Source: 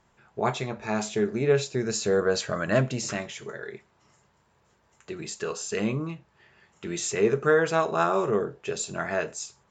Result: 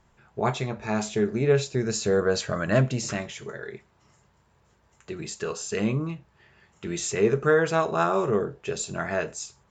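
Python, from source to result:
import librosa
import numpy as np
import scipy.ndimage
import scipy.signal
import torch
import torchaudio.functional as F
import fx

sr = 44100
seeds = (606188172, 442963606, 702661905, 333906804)

y = fx.low_shelf(x, sr, hz=110.0, db=9.5)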